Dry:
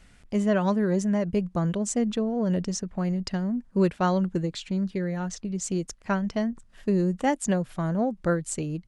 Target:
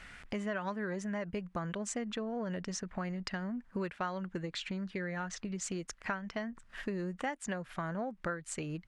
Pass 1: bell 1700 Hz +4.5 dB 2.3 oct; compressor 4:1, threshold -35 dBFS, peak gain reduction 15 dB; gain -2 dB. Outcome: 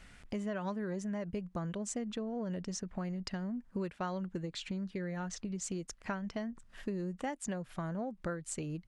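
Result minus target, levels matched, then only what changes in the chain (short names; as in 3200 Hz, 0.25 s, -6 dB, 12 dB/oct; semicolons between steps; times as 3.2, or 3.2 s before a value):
2000 Hz band -6.0 dB
change: bell 1700 Hz +14 dB 2.3 oct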